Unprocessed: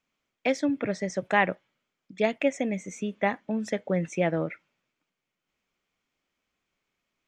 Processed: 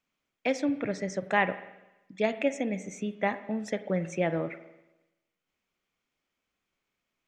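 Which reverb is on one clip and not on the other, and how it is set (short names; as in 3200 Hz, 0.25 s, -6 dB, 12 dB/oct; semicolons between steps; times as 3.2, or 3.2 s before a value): spring tank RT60 1 s, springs 42/48 ms, chirp 40 ms, DRR 12 dB; gain -2.5 dB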